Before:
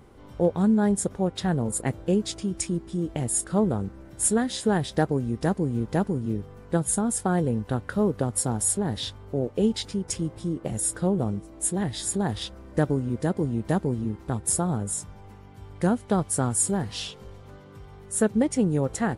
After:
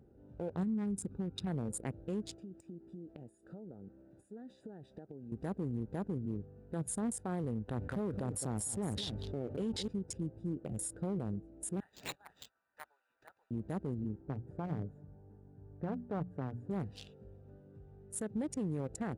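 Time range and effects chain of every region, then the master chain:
0.63–1.47 s: compression, threshold -26 dBFS + comb 0.8 ms, depth 68%
2.35–5.32 s: high-pass 290 Hz 6 dB/octave + compression 10:1, threshold -34 dBFS
7.68–9.88 s: delay 211 ms -14.5 dB + level flattener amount 50%
11.80–13.51 s: steep high-pass 1 kHz + careless resampling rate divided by 4×, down none, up hold
14.19–16.71 s: low-pass 1.5 kHz + hum notches 60/120/180/240 Hz + comb 6.9 ms, depth 38%
whole clip: local Wiener filter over 41 samples; high-pass 64 Hz 6 dB/octave; peak limiter -21.5 dBFS; trim -7.5 dB

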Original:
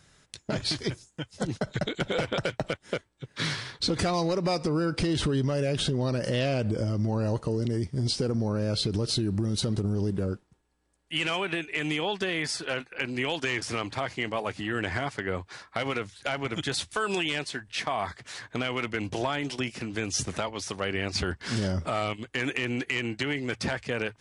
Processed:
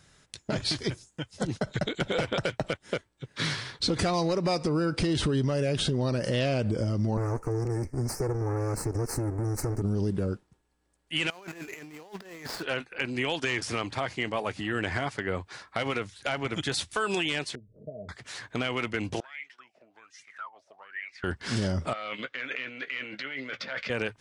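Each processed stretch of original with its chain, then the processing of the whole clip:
7.17–9.82 s: comb filter that takes the minimum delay 2.3 ms + Chebyshev band-stop 1.9–6.1 kHz
11.30–12.63 s: median filter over 15 samples + bass shelf 320 Hz -7 dB + compressor with a negative ratio -40 dBFS, ratio -0.5
17.55–18.09 s: rippled Chebyshev low-pass 640 Hz, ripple 9 dB + upward compressor, threshold -48 dBFS
19.20–21.24 s: treble shelf 2.3 kHz +10.5 dB + wah-wah 1.2 Hz 600–2200 Hz, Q 17
21.93–23.90 s: compressor with a negative ratio -37 dBFS + cabinet simulation 290–5000 Hz, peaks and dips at 360 Hz -10 dB, 550 Hz +6 dB, 810 Hz -7 dB, 1.4 kHz +8 dB, 2.1 kHz +6 dB, 3.5 kHz +5 dB + doubling 15 ms -10 dB
whole clip: none

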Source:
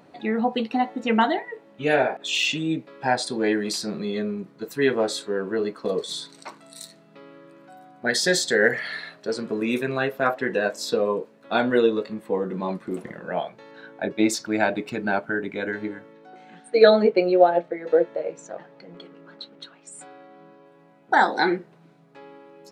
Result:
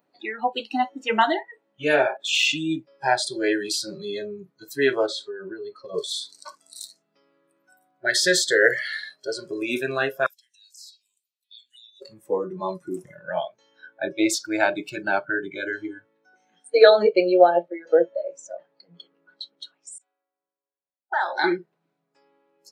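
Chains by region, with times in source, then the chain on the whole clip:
5.06–5.94 s: low-pass 4.4 kHz + compression 12:1, threshold -27 dBFS
10.26–12.02 s: inverse Chebyshev high-pass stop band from 1.3 kHz, stop band 50 dB + compression 3:1, threshold -49 dBFS
19.98–21.44 s: compression 16:1, threshold -22 dBFS + band-pass 400–3300 Hz + three bands expanded up and down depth 100%
whole clip: spectral noise reduction 20 dB; high-pass 290 Hz 6 dB/octave; trim +2.5 dB

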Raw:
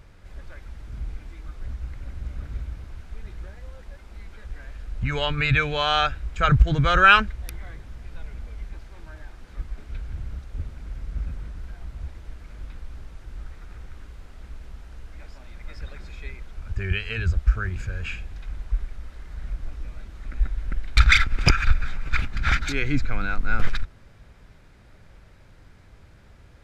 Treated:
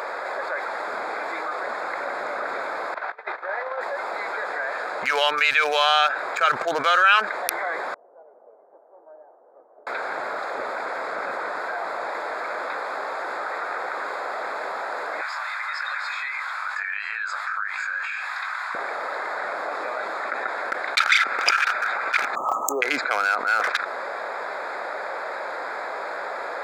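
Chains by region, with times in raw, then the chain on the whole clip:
2.94–3.81 s: low-pass 3 kHz + peaking EQ 160 Hz -14 dB 2.4 oct + compressor with a negative ratio -43 dBFS, ratio -0.5
7.94–9.87 s: inverse Chebyshev low-pass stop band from 3.4 kHz, stop band 80 dB + differentiator
15.21–18.75 s: high-pass 1.1 kHz 24 dB/octave + compression 12:1, threshold -46 dBFS + doubling 20 ms -7.5 dB
22.35–22.82 s: brick-wall FIR band-stop 1.3–5.9 kHz + careless resampling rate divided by 2×, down none, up hold
whole clip: local Wiener filter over 15 samples; high-pass 570 Hz 24 dB/octave; level flattener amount 70%; trim -3.5 dB

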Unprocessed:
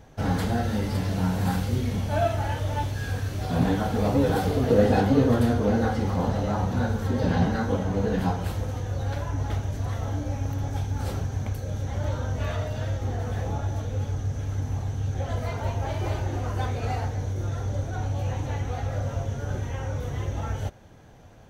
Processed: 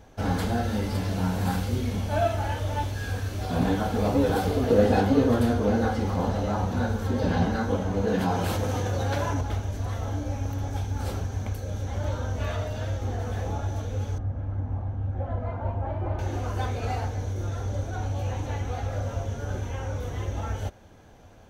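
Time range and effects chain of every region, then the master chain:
8.07–9.41 s: high-pass 110 Hz + level flattener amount 70%
14.18–16.19 s: low-pass 1.2 kHz + band-stop 430 Hz, Q 5.9
whole clip: peaking EQ 140 Hz -8.5 dB 0.41 oct; band-stop 1.9 kHz, Q 22

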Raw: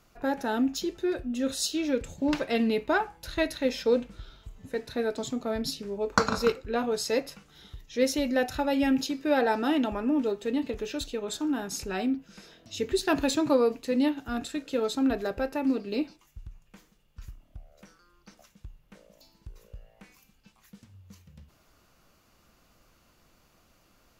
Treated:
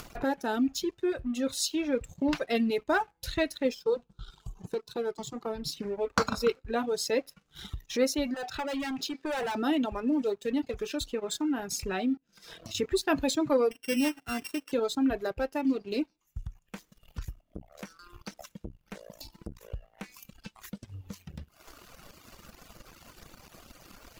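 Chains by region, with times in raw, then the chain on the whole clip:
3.74–5.77 s: treble shelf 8.6 kHz -8.5 dB + static phaser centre 390 Hz, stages 8
8.34–9.55 s: low-pass 5.4 kHz + bass shelf 250 Hz -11 dB + hard clipper -32 dBFS
12.17–12.75 s: hum notches 60/120/180/240/300/360/420 Hz + compression 12:1, threshold -48 dBFS
13.71–14.72 s: sorted samples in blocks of 16 samples + high-pass 150 Hz 6 dB/octave + peaking EQ 1.6 kHz +4.5 dB 0.36 oct
17.43–19.61 s: delay 599 ms -20 dB + transformer saturation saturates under 290 Hz
whole clip: upward compressor, threshold -27 dBFS; waveshaping leveller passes 2; reverb removal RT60 1.4 s; trim -8 dB

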